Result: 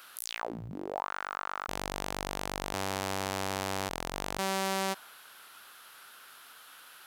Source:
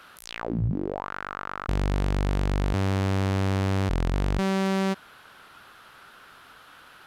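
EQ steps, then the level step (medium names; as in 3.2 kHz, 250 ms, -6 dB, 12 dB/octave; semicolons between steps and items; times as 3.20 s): RIAA curve recording; dynamic bell 800 Hz, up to +6 dB, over -46 dBFS, Q 1.3; -5.5 dB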